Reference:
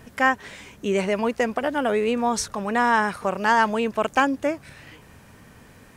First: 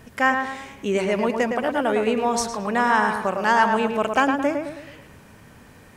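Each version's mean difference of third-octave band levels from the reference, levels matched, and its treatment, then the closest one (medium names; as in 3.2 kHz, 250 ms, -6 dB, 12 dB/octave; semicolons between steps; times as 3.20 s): 3.0 dB: tape echo 109 ms, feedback 48%, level -4 dB, low-pass 2.4 kHz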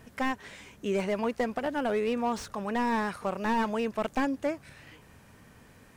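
2.0 dB: slew-rate limiter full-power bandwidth 110 Hz; trim -6 dB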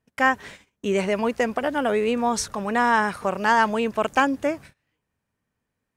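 4.5 dB: gate -39 dBFS, range -31 dB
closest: second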